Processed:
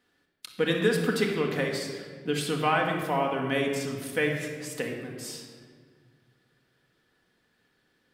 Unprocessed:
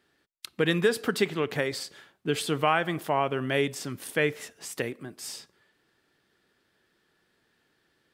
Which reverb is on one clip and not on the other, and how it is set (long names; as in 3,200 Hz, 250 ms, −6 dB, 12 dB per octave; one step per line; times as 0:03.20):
rectangular room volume 2,100 cubic metres, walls mixed, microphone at 1.9 metres
level −3 dB